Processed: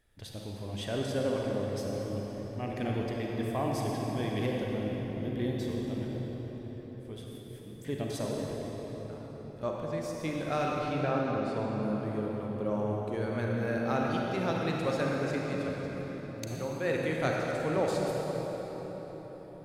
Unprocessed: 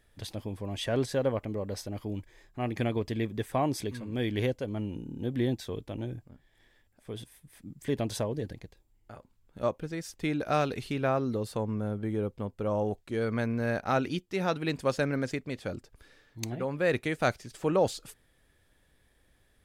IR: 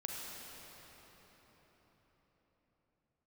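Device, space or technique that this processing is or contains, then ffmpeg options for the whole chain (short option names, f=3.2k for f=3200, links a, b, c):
cathedral: -filter_complex "[0:a]asettb=1/sr,asplit=3[a][b][c];[a]atrim=end=10.674[d];[b]atrim=start=10.67:end=11.83,asetpts=PTS-STARTPTS,afade=t=in:d=0.004:c=qsin,afade=t=out:st=1.156:d=0.004:c=qsin,lowpass=5.3k[e];[c]atrim=start=11.826[f];[d][e]acrossfade=d=0.004:c1=hsin:c2=qsin[g];[g][f]acrossfade=d=0.004:c1=qsin:c2=hsin[h];[1:a]atrim=start_sample=2205[i];[h][i]afir=irnorm=-1:irlink=0,volume=-2dB"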